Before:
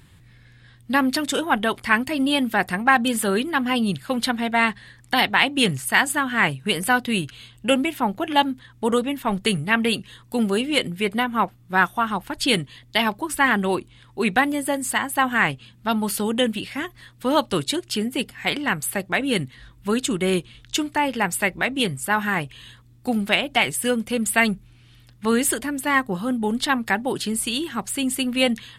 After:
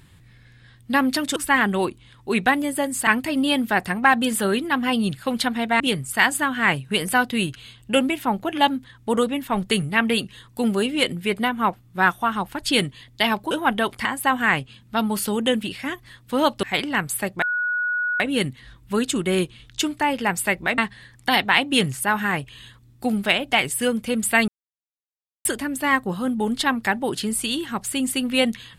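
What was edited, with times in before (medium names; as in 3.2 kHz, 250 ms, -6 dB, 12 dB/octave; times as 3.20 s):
1.36–1.90 s: swap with 13.26–14.97 s
4.63–5.89 s: swap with 21.73–22.07 s
17.55–18.36 s: delete
19.15 s: add tone 1.46 kHz -20.5 dBFS 0.78 s
24.51–25.48 s: mute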